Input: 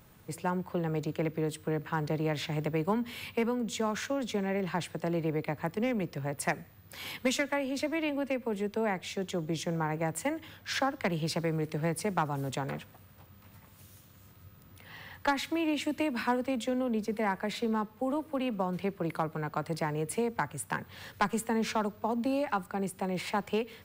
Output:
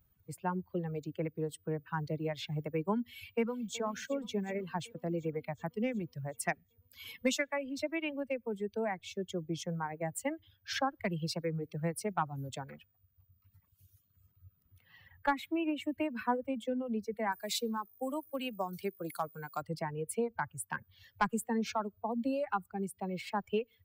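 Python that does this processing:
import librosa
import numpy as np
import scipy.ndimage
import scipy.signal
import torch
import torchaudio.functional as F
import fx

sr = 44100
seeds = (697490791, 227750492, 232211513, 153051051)

y = fx.echo_throw(x, sr, start_s=3.11, length_s=0.71, ms=370, feedback_pct=80, wet_db=-9.5)
y = fx.peak_eq(y, sr, hz=5300.0, db=-8.5, octaves=1.0, at=(15.08, 16.65))
y = fx.bass_treble(y, sr, bass_db=-4, treble_db=14, at=(17.32, 19.62))
y = fx.bin_expand(y, sr, power=1.5)
y = fx.dereverb_blind(y, sr, rt60_s=1.2)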